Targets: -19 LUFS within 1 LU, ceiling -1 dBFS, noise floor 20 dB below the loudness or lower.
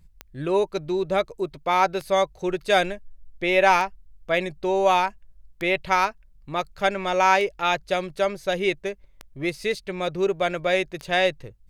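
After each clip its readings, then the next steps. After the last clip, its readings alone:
clicks 7; loudness -23.5 LUFS; peak -4.5 dBFS; loudness target -19.0 LUFS
-> de-click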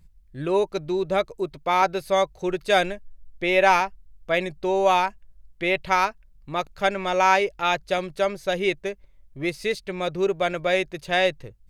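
clicks 0; loudness -23.5 LUFS; peak -4.5 dBFS; loudness target -19.0 LUFS
-> gain +4.5 dB; limiter -1 dBFS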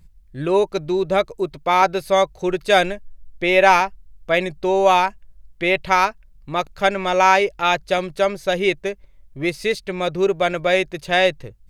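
loudness -19.0 LUFS; peak -1.0 dBFS; noise floor -49 dBFS

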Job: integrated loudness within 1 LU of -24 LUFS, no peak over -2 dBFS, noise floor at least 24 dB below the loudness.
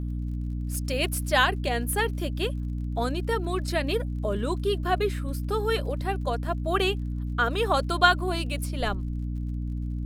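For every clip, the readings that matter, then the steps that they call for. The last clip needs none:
ticks 35/s; hum 60 Hz; harmonics up to 300 Hz; hum level -28 dBFS; loudness -27.5 LUFS; peak -4.5 dBFS; loudness target -24.0 LUFS
-> de-click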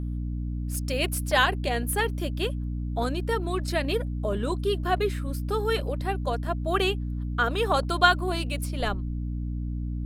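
ticks 0.99/s; hum 60 Hz; harmonics up to 300 Hz; hum level -28 dBFS
-> notches 60/120/180/240/300 Hz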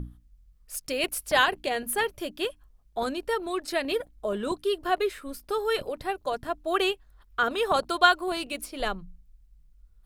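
hum none; loudness -28.0 LUFS; peak -4.5 dBFS; loudness target -24.0 LUFS
-> gain +4 dB; limiter -2 dBFS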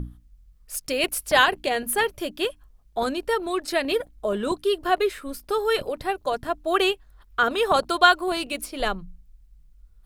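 loudness -24.0 LUFS; peak -2.0 dBFS; noise floor -55 dBFS

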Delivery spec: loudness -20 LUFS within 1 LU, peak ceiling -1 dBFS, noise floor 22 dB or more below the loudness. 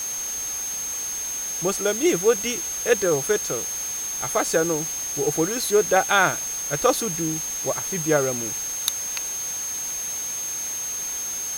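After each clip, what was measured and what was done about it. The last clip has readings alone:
steady tone 6400 Hz; tone level -27 dBFS; noise floor -29 dBFS; noise floor target -45 dBFS; loudness -23.0 LUFS; peak -1.0 dBFS; loudness target -20.0 LUFS
-> notch 6400 Hz, Q 30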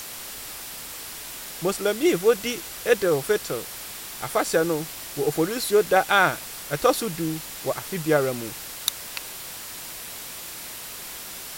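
steady tone none; noise floor -38 dBFS; noise floor target -48 dBFS
-> denoiser 10 dB, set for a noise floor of -38 dBFS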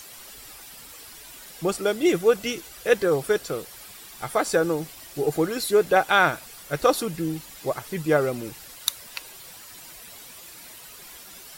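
noise floor -45 dBFS; noise floor target -46 dBFS
-> denoiser 6 dB, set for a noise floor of -45 dBFS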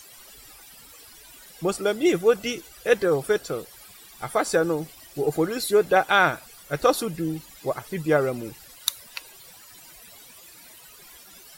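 noise floor -48 dBFS; loudness -24.0 LUFS; peak -1.5 dBFS; loudness target -20.0 LUFS
-> gain +4 dB; limiter -1 dBFS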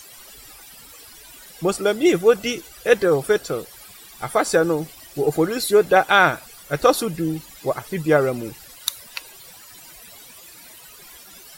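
loudness -20.5 LUFS; peak -1.0 dBFS; noise floor -44 dBFS

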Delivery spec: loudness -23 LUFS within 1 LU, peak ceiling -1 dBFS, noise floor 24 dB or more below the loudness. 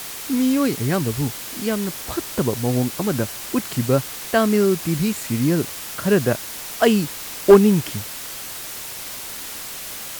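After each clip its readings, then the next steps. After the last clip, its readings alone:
noise floor -33 dBFS; noise floor target -45 dBFS; loudness -21.0 LUFS; peak -2.5 dBFS; loudness target -23.0 LUFS
-> denoiser 12 dB, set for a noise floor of -33 dBFS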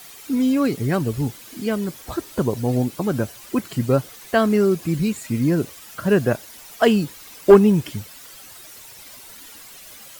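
noise floor -42 dBFS; noise floor target -45 dBFS
-> denoiser 6 dB, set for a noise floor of -42 dBFS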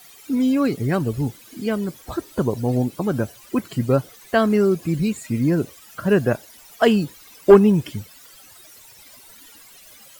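noise floor -47 dBFS; loudness -21.0 LUFS; peak -2.5 dBFS; loudness target -23.0 LUFS
-> gain -2 dB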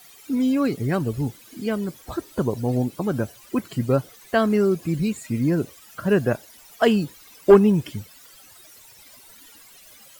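loudness -23.0 LUFS; peak -4.5 dBFS; noise floor -49 dBFS

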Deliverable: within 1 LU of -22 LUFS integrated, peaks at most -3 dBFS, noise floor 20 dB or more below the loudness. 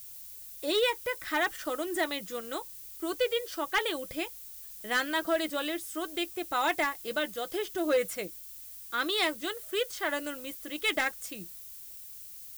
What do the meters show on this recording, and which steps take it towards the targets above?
clipped 0.3%; flat tops at -20.0 dBFS; noise floor -46 dBFS; noise floor target -52 dBFS; loudness -31.5 LUFS; peak -20.0 dBFS; loudness target -22.0 LUFS
-> clip repair -20 dBFS; noise print and reduce 6 dB; gain +9.5 dB

